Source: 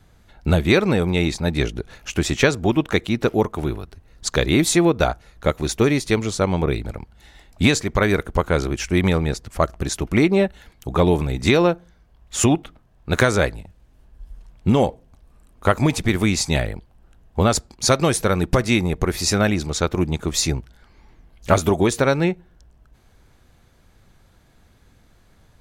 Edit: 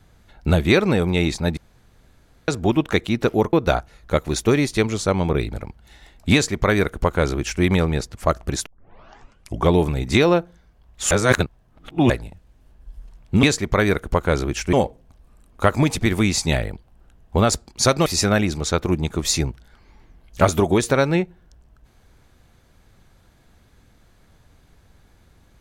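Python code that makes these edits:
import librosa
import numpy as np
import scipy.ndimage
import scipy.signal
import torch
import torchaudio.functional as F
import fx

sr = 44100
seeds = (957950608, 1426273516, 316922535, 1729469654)

y = fx.edit(x, sr, fx.room_tone_fill(start_s=1.57, length_s=0.91),
    fx.cut(start_s=3.53, length_s=1.33),
    fx.duplicate(start_s=7.66, length_s=1.3, to_s=14.76),
    fx.tape_start(start_s=9.99, length_s=1.05),
    fx.reverse_span(start_s=12.44, length_s=0.99),
    fx.cut(start_s=18.09, length_s=1.06), tone=tone)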